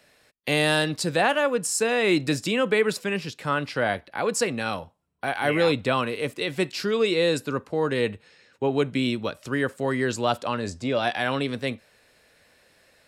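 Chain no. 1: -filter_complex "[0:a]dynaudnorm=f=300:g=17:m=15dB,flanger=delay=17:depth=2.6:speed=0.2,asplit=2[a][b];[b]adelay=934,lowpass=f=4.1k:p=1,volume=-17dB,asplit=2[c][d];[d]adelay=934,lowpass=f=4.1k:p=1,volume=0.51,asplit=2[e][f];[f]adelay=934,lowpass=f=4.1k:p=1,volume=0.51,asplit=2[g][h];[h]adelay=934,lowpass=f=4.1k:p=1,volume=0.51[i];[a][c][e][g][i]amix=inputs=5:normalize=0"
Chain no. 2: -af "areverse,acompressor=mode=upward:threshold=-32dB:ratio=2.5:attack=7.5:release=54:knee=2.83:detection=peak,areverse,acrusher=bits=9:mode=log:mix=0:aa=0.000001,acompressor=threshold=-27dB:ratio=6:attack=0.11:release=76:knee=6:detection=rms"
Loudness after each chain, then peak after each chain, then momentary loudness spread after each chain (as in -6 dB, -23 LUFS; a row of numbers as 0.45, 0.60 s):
-22.0, -35.0 LUFS; -3.5, -23.5 dBFS; 11, 9 LU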